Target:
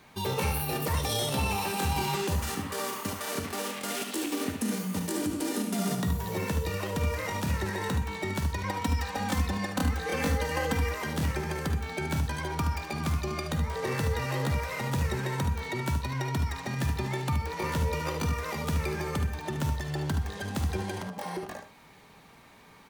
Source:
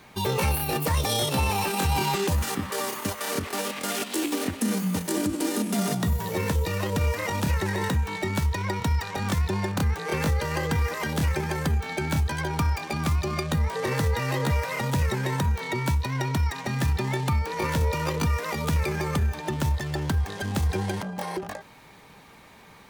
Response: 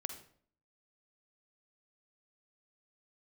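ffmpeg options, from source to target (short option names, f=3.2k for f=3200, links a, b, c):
-filter_complex "[0:a]asettb=1/sr,asplit=3[a][b][c];[a]atrim=end=8.634[d];[b]atrim=start=8.63:end=10.89,asetpts=PTS-STARTPTS,afade=t=in:d=0.004:c=qsin,afade=t=out:st=2.256:d=0.004:c=qsin,aecho=1:1:3.9:0.95,atrim=end_sample=99666[e];[c]atrim=start=10.886[f];[d][e]acrossfade=d=0.004:c1=hsin:c2=qsin[g];[g][f]acrossfade=d=0.004:c1=qsin:c2=hsin,aecho=1:1:74:0.376[h];[1:a]atrim=start_sample=2205,atrim=end_sample=3528[i];[h][i]afir=irnorm=-1:irlink=0,volume=-3dB"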